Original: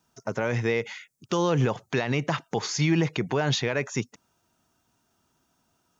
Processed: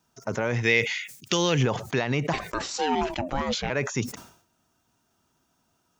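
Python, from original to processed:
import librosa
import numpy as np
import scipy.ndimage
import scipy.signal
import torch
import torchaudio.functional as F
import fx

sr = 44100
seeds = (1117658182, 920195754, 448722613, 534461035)

y = fx.high_shelf_res(x, sr, hz=1600.0, db=8.5, q=1.5, at=(0.63, 1.63))
y = fx.ring_mod(y, sr, carrier_hz=fx.line((2.32, 950.0), (3.69, 310.0)), at=(2.32, 3.69), fade=0.02)
y = fx.sustainer(y, sr, db_per_s=100.0)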